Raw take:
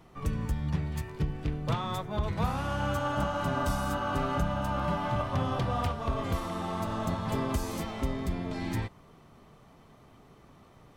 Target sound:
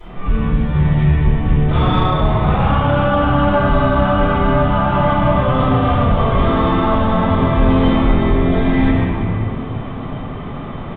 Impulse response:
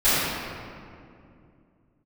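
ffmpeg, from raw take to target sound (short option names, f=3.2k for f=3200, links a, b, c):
-filter_complex "[0:a]areverse,acompressor=threshold=-38dB:ratio=10,areverse,aresample=8000,aresample=44100[a];[1:a]atrim=start_sample=2205,asetrate=40572,aresample=44100[b];[a][b]afir=irnorm=-1:irlink=0,acontrast=46"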